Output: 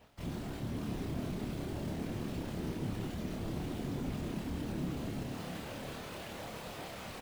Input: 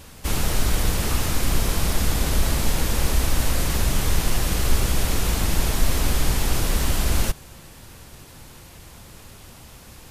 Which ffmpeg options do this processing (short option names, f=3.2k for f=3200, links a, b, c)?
-filter_complex "[0:a]afwtdn=0.1,lowshelf=f=390:g=4,bandreject=f=209.5:t=h:w=4,bandreject=f=419:t=h:w=4,bandreject=f=628.5:t=h:w=4,areverse,acompressor=mode=upward:threshold=-20dB:ratio=2.5,areverse,flanger=delay=16:depth=3.6:speed=1.8,atempo=1.4,highpass=f=130:w=0.5412,highpass=f=130:w=1.3066,equalizer=f=150:t=q:w=4:g=-9,equalizer=f=280:t=q:w=4:g=-3,equalizer=f=640:t=q:w=4:g=9,lowpass=f=4k:w=0.5412,lowpass=f=4k:w=1.3066,acrusher=bits=9:dc=4:mix=0:aa=0.000001,asoftclip=type=tanh:threshold=-36.5dB,afftfilt=real='hypot(re,im)*cos(2*PI*random(0))':imag='hypot(re,im)*sin(2*PI*random(1))':win_size=512:overlap=0.75,asplit=2[a][b];[b]adelay=28,volume=-3.5dB[c];[a][c]amix=inputs=2:normalize=0,asplit=2[d][e];[e]aecho=0:1:664:0.398[f];[d][f]amix=inputs=2:normalize=0,volume=6.5dB"